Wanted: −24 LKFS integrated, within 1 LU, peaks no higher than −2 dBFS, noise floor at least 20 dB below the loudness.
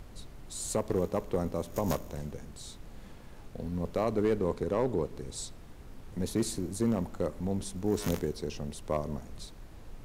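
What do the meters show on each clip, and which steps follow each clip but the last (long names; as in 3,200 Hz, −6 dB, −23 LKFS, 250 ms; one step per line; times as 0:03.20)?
share of clipped samples 0.4%; peaks flattened at −20.0 dBFS; background noise floor −49 dBFS; target noise floor −53 dBFS; integrated loudness −33.0 LKFS; sample peak −20.0 dBFS; target loudness −24.0 LKFS
→ clipped peaks rebuilt −20 dBFS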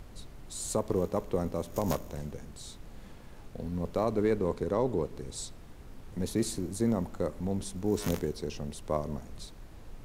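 share of clipped samples 0.0%; background noise floor −49 dBFS; target noise floor −53 dBFS
→ noise reduction from a noise print 6 dB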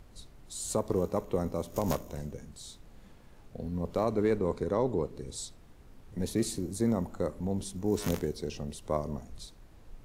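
background noise floor −55 dBFS; integrated loudness −33.0 LKFS; sample peak −13.5 dBFS; target loudness −24.0 LKFS
→ level +9 dB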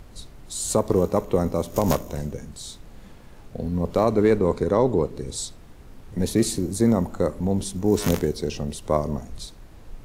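integrated loudness −24.0 LKFS; sample peak −4.5 dBFS; background noise floor −46 dBFS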